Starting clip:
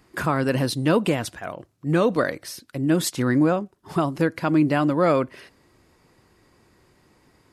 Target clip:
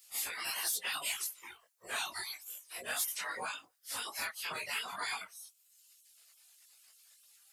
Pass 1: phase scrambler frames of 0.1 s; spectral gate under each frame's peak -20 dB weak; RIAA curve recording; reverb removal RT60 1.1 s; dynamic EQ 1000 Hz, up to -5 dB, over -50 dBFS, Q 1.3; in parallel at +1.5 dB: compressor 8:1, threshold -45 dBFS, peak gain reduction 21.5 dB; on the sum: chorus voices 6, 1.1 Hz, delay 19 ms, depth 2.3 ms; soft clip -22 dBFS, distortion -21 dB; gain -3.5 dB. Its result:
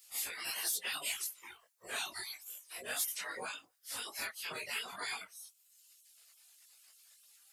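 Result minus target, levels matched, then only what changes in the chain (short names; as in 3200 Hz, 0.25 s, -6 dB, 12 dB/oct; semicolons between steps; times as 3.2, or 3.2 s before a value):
compressor: peak gain reduction +5.5 dB; 1000 Hz band -3.0 dB
change: dynamic EQ 400 Hz, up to -5 dB, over -50 dBFS, Q 1.3; change: compressor 8:1, threshold -38.5 dBFS, peak gain reduction 15.5 dB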